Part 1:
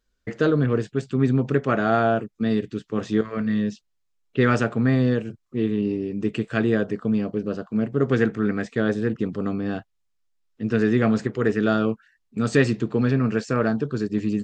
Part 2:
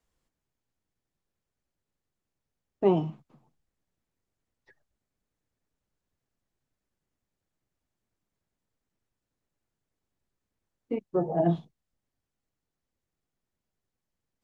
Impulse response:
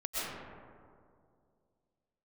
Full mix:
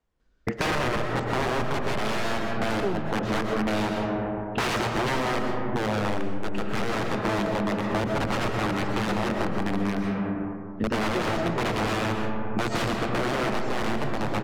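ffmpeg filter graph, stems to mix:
-filter_complex "[0:a]aeval=exprs='(mod(8.91*val(0)+1,2)-1)/8.91':c=same,adelay=200,volume=2.5dB,asplit=2[a][b];[b]volume=-5.5dB[c];[1:a]volume=2dB[d];[2:a]atrim=start_sample=2205[e];[c][e]afir=irnorm=-1:irlink=0[f];[a][d][f]amix=inputs=3:normalize=0,aemphasis=mode=reproduction:type=75fm,acompressor=threshold=-23dB:ratio=6"

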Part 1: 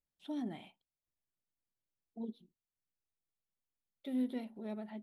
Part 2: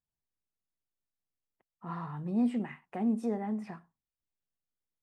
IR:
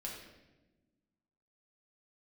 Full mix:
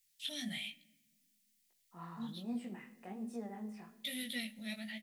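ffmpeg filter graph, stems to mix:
-filter_complex "[0:a]firequalizer=gain_entry='entry(220,0);entry(370,-27);entry(550,-3);entry(890,-15);entry(1900,12)':delay=0.05:min_phase=1,volume=1.5dB,asplit=2[a][b];[b]volume=-16dB[c];[1:a]highpass=170,adelay=100,volume=-10.5dB,asplit=2[d][e];[e]volume=-7dB[f];[2:a]atrim=start_sample=2205[g];[c][f]amix=inputs=2:normalize=0[h];[h][g]afir=irnorm=-1:irlink=0[i];[a][d][i]amix=inputs=3:normalize=0,highshelf=f=2.9k:g=11,flanger=delay=17:depth=6.9:speed=1.2"

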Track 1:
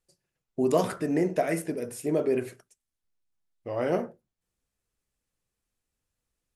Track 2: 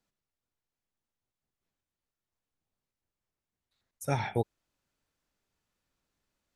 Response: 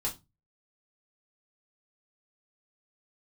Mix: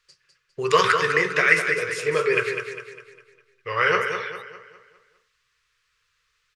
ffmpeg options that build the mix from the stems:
-filter_complex "[0:a]lowpass=7.7k,equalizer=f=1.9k:t=o:w=2:g=7,volume=2dB,asplit=3[a][b][c];[b]volume=-7.5dB[d];[1:a]highpass=1.1k,volume=0.5dB[e];[c]apad=whole_len=289015[f];[e][f]sidechaincompress=threshold=-28dB:ratio=8:attack=16:release=1190[g];[d]aecho=0:1:202|404|606|808|1010|1212:1|0.43|0.185|0.0795|0.0342|0.0147[h];[a][g][h]amix=inputs=3:normalize=0,firequalizer=gain_entry='entry(140,0);entry(260,-24);entry(440,6);entry(670,-16);entry(1100,12);entry(4900,11);entry(8200,4);entry(13000,0)':delay=0.05:min_phase=1"

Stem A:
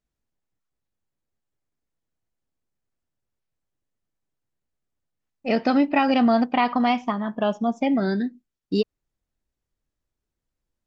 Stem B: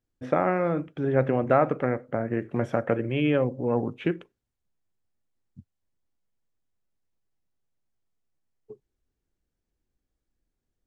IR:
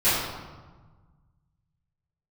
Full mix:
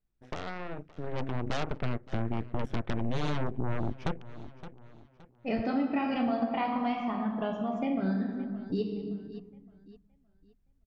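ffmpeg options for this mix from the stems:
-filter_complex "[0:a]bass=f=250:g=7,treble=f=4k:g=-8,volume=-6.5dB,asplit=3[a][b][c];[b]volume=-16.5dB[d];[c]volume=-19dB[e];[1:a]asubboost=boost=12:cutoff=150,aeval=exprs='0.422*(cos(1*acos(clip(val(0)/0.422,-1,1)))-cos(1*PI/2))+0.211*(cos(8*acos(clip(val(0)/0.422,-1,1)))-cos(8*PI/2))':c=same,volume=-8dB,afade=t=in:st=0.99:d=0.67:silence=0.298538,asplit=2[f][g];[g]volume=-22dB[h];[2:a]atrim=start_sample=2205[i];[d][i]afir=irnorm=-1:irlink=0[j];[e][h]amix=inputs=2:normalize=0,aecho=0:1:568|1136|1704|2272|2840:1|0.33|0.109|0.0359|0.0119[k];[a][f][j][k]amix=inputs=4:normalize=0,acompressor=threshold=-33dB:ratio=2"

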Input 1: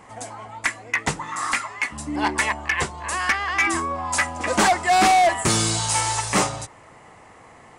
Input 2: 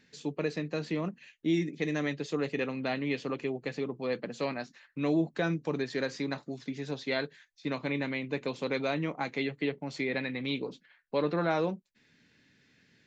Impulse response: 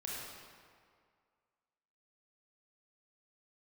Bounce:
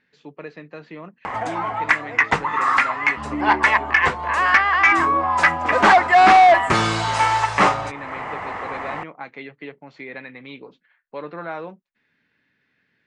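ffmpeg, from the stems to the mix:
-filter_complex "[0:a]acompressor=mode=upward:threshold=-24dB:ratio=2.5,adelay=1250,volume=2dB[a];[1:a]volume=-5.5dB[b];[a][b]amix=inputs=2:normalize=0,lowpass=1.3k,tiltshelf=f=970:g=-10,acontrast=87"

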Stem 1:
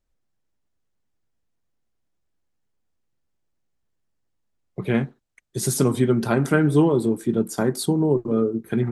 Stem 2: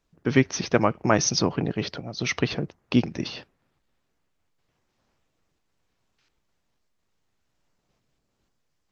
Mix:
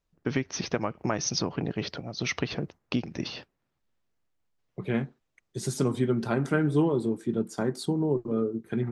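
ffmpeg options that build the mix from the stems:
-filter_complex "[0:a]lowpass=7k,volume=-6.5dB[a];[1:a]agate=range=-7dB:threshold=-43dB:ratio=16:detection=peak,acompressor=threshold=-22dB:ratio=6,volume=-2dB[b];[a][b]amix=inputs=2:normalize=0"

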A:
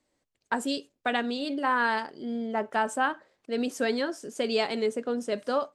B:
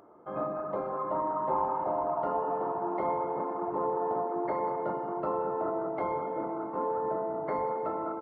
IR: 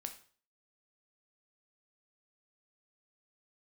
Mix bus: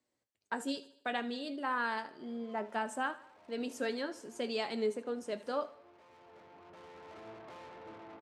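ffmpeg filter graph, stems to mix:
-filter_complex "[0:a]volume=-4dB,asplit=3[a][b][c];[b]volume=-17.5dB[d];[1:a]aeval=exprs='(tanh(100*val(0)+0.8)-tanh(0.8))/100':c=same,adelay=1500,volume=-3.5dB[e];[c]apad=whole_len=428237[f];[e][f]sidechaincompress=threshold=-47dB:ratio=3:attack=26:release=1180[g];[d]aecho=0:1:77|154|231|308|385|462:1|0.46|0.212|0.0973|0.0448|0.0206[h];[a][g][h]amix=inputs=3:normalize=0,highpass=73,flanger=delay=8.1:depth=3:regen=69:speed=0.66:shape=sinusoidal"

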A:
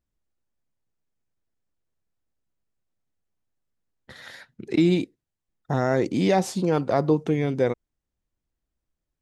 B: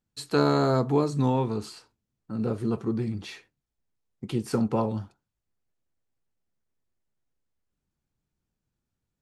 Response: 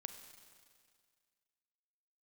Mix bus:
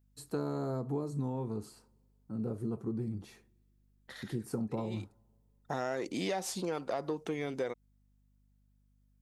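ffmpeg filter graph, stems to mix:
-filter_complex "[0:a]acontrast=87,highpass=f=560:p=1,aeval=exprs='val(0)+0.00126*(sin(2*PI*50*n/s)+sin(2*PI*2*50*n/s)/2+sin(2*PI*3*50*n/s)/3+sin(2*PI*4*50*n/s)/4+sin(2*PI*5*50*n/s)/5)':c=same,volume=-10dB[a];[1:a]equalizer=f=3.1k:t=o:w=2.6:g=-13.5,volume=-6dB,asplit=3[b][c][d];[c]volume=-19.5dB[e];[d]apad=whole_len=406540[f];[a][f]sidechaincompress=threshold=-46dB:ratio=8:attack=6:release=166[g];[2:a]atrim=start_sample=2205[h];[e][h]afir=irnorm=-1:irlink=0[i];[g][b][i]amix=inputs=3:normalize=0,highshelf=f=9.3k:g=7.5,acompressor=threshold=-31dB:ratio=5"

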